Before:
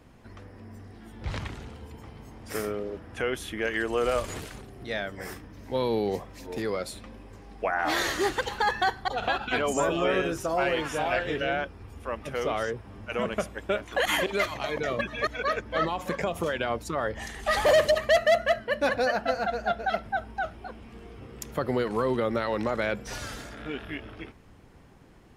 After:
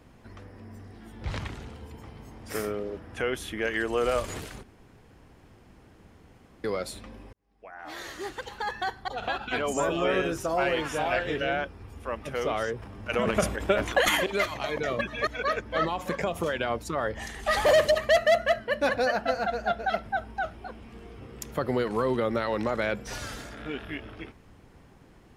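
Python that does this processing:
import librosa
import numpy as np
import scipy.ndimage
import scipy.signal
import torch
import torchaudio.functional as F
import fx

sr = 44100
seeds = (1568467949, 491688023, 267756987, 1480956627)

y = fx.transient(x, sr, attack_db=5, sustain_db=12, at=(12.78, 14.17))
y = fx.edit(y, sr, fx.room_tone_fill(start_s=4.63, length_s=2.01),
    fx.fade_in_span(start_s=7.33, length_s=2.89), tone=tone)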